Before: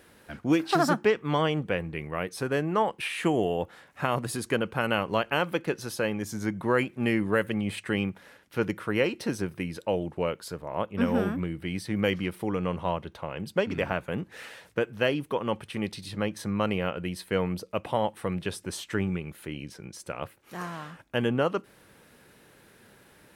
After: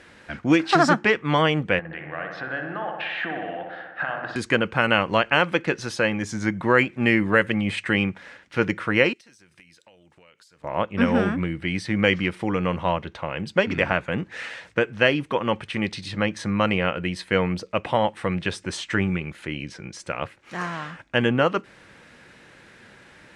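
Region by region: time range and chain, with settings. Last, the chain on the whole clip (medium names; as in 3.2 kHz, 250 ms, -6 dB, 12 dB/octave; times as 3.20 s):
1.79–4.36 s: compression 5:1, threshold -33 dBFS + cabinet simulation 210–3600 Hz, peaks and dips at 230 Hz -7 dB, 400 Hz -7 dB, 730 Hz +6 dB, 1 kHz -5 dB, 1.6 kHz +8 dB, 2.3 kHz -8 dB + feedback echo behind a low-pass 61 ms, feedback 70%, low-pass 2.1 kHz, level -4.5 dB
9.13–10.64 s: pre-emphasis filter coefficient 0.9 + compression 16:1, threshold -54 dBFS + careless resampling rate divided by 2×, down filtered, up zero stuff
whole clip: low-pass 7.9 kHz 24 dB/octave; peaking EQ 2 kHz +6 dB 1.1 oct; band-stop 420 Hz, Q 12; trim +5 dB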